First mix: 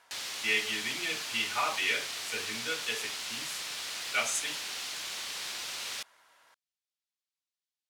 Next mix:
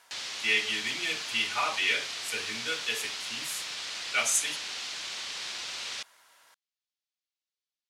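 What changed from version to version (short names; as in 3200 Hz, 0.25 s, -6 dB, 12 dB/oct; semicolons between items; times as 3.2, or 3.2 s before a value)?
background: add air absorption 94 m; master: add high shelf 3400 Hz +8 dB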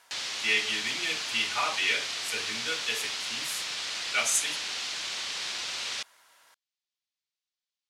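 background +3.0 dB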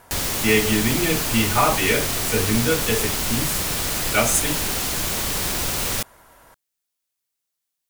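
background: remove air absorption 94 m; master: remove band-pass 4100 Hz, Q 0.93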